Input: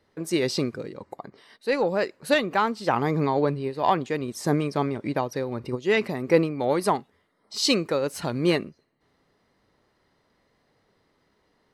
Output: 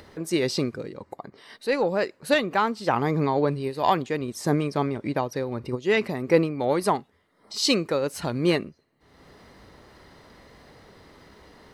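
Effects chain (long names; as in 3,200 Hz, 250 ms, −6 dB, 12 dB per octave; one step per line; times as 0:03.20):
0:03.51–0:04.02: high-shelf EQ 5,200 Hz +11 dB
upward compression, threshold −36 dBFS
parametric band 61 Hz +7.5 dB 0.74 octaves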